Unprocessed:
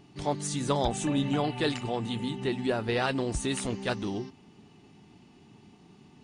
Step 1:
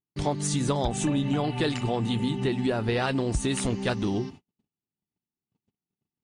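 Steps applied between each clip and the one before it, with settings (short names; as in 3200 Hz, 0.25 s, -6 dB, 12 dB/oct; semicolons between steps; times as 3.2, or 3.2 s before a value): gate -48 dBFS, range -48 dB; low shelf 200 Hz +5.5 dB; compressor, threshold -27 dBFS, peak gain reduction 7 dB; gain +5 dB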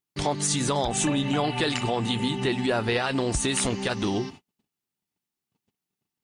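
low shelf 450 Hz -9.5 dB; limiter -22 dBFS, peak gain reduction 8 dB; gain +7.5 dB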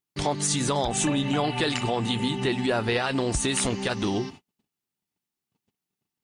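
nothing audible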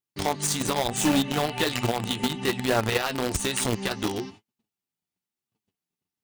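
flange 1.1 Hz, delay 7.9 ms, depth 4.9 ms, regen +34%; in parallel at -3.5 dB: bit-crush 4-bit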